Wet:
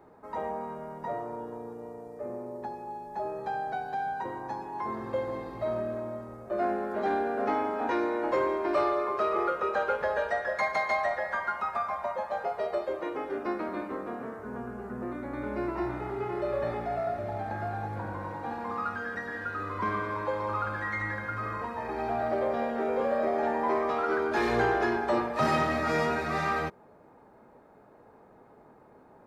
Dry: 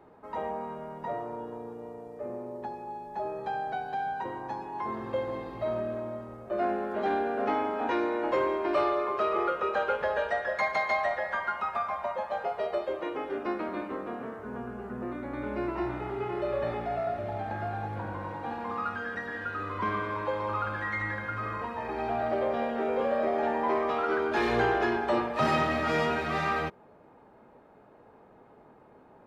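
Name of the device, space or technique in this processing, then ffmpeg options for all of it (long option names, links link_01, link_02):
exciter from parts: -filter_complex "[0:a]asettb=1/sr,asplit=3[link_01][link_02][link_03];[link_01]atrim=end=25.784[link_04];[link_02]atrim=start=25.78:end=26.39,asetpts=PTS-STARTPTS,afade=type=in:duration=0.004:curve=qsin,afade=type=out:start_time=0.606:duration=0.004:curve=qsin,bandreject=frequency=3100:width=11[link_05];[link_03]atrim=start=26.386[link_06];[link_04][link_05]acrossfade=duration=0.004:curve1=hsin:curve2=qsin[link_07];[link_07][link_06]acrossfade=duration=0.004:curve1=qsin:curve2=hsin,asplit=2[link_08][link_09];[link_09]highpass=frequency=2800:width=0.5412,highpass=frequency=2800:width=1.3066,asoftclip=type=tanh:threshold=-36dB,volume=-4dB[link_10];[link_08][link_10]amix=inputs=2:normalize=0"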